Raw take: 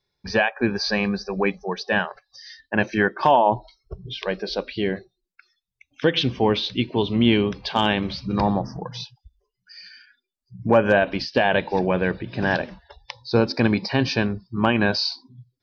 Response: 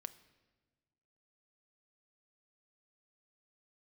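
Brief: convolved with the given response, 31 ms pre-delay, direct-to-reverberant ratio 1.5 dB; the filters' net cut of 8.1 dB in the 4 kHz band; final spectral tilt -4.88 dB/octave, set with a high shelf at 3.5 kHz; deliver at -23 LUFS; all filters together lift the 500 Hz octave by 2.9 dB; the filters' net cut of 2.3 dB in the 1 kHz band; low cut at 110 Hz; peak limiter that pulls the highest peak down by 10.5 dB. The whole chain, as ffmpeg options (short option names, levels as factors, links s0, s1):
-filter_complex "[0:a]highpass=110,equalizer=f=500:t=o:g=5,equalizer=f=1000:t=o:g=-4.5,highshelf=f=3500:g=-8,equalizer=f=4000:t=o:g=-5,alimiter=limit=0.178:level=0:latency=1,asplit=2[s0][s1];[1:a]atrim=start_sample=2205,adelay=31[s2];[s1][s2]afir=irnorm=-1:irlink=0,volume=1.33[s3];[s0][s3]amix=inputs=2:normalize=0,volume=1.26"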